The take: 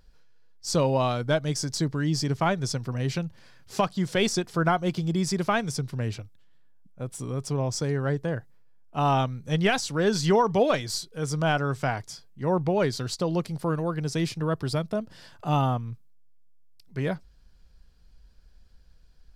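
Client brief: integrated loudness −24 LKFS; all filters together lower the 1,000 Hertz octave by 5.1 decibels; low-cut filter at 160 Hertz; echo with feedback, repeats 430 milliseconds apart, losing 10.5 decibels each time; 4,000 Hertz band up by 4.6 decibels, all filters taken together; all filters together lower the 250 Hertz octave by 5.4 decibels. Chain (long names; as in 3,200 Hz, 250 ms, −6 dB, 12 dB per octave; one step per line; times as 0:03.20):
high-pass filter 160 Hz
parametric band 250 Hz −6 dB
parametric band 1,000 Hz −7 dB
parametric band 4,000 Hz +6.5 dB
repeating echo 430 ms, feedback 30%, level −10.5 dB
level +5 dB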